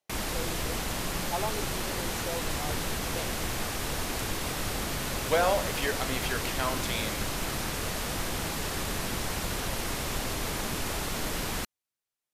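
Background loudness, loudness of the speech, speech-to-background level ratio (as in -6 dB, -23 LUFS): -32.0 LUFS, -34.0 LUFS, -2.0 dB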